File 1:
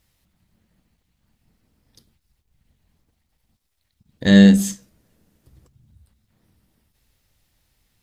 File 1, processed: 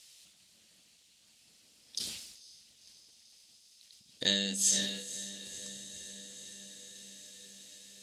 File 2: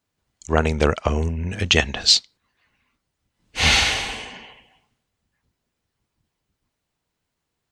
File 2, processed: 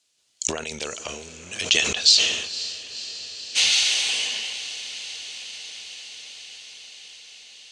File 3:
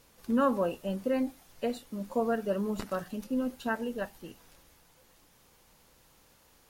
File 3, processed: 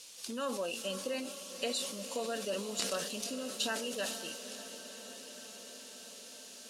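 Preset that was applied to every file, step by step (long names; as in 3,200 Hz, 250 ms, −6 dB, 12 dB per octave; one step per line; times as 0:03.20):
flat-topped bell 1,300 Hz −8 dB
downward compressor 4 to 1, threshold −33 dBFS
meter weighting curve ITU-R 468
feedback delay with all-pass diffusion 517 ms, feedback 76%, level −12.5 dB
level that may fall only so fast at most 55 dB per second
level +4.5 dB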